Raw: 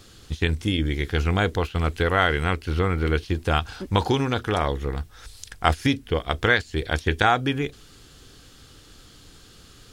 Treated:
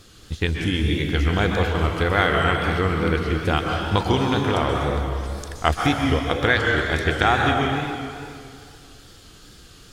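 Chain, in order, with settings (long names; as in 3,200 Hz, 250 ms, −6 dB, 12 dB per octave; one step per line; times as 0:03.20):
dense smooth reverb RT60 2.3 s, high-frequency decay 0.85×, pre-delay 115 ms, DRR 0.5 dB
tape wow and flutter 58 cents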